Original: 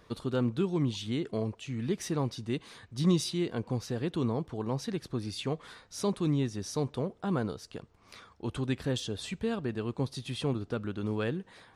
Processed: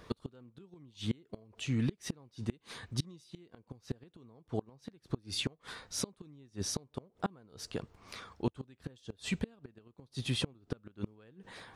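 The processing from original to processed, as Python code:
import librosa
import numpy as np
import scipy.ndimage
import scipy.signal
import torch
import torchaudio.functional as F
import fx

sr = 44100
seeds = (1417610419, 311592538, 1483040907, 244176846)

y = fx.gate_flip(x, sr, shuts_db=-25.0, range_db=-31)
y = y * 10.0 ** (4.0 / 20.0)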